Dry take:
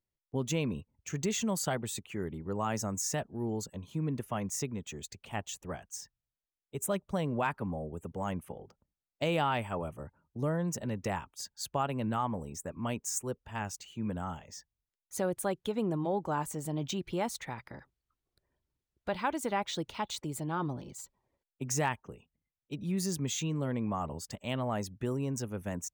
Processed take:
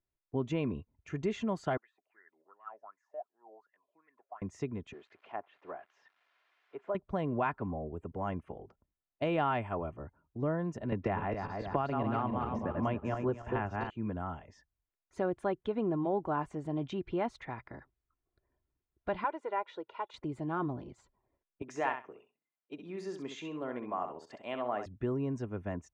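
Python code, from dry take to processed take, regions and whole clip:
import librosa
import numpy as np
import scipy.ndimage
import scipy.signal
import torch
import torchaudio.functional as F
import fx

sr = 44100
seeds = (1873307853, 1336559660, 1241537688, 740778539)

y = fx.chain(x, sr, fx.highpass(hz=380.0, slope=12),
    fx.wah_lfo(hz=2.7, low_hz=570.0, high_hz=2000.0, q=12.0), at=(1.77, 4.42))
y = fx.chain(y, sr, fx.crossing_spikes(level_db=-37.5),
    fx.bandpass_edges(low_hz=470.0, high_hz=2200.0),
    fx.env_lowpass_down(base_hz=1100.0, full_db=-37.0), at=(4.93, 6.95))
y = fx.chain(y, sr, fx.reverse_delay_fb(ms=139, feedback_pct=52, wet_db=-4.0),
    fx.lowpass(hz=3600.0, slope=12),
    fx.band_squash(depth_pct=100), at=(10.92, 13.9))
y = fx.chain(y, sr, fx.highpass(hz=520.0, slope=12),
    fx.high_shelf(hz=2200.0, db=-12.0),
    fx.comb(ms=2.1, depth=0.56), at=(19.24, 20.14))
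y = fx.chain(y, sr, fx.highpass(hz=380.0, slope=12),
    fx.echo_feedback(ms=65, feedback_pct=16, wet_db=-8.0), at=(21.62, 24.86))
y = scipy.signal.sosfilt(scipy.signal.butter(2, 2000.0, 'lowpass', fs=sr, output='sos'), y)
y = y + 0.32 * np.pad(y, (int(2.9 * sr / 1000.0), 0))[:len(y)]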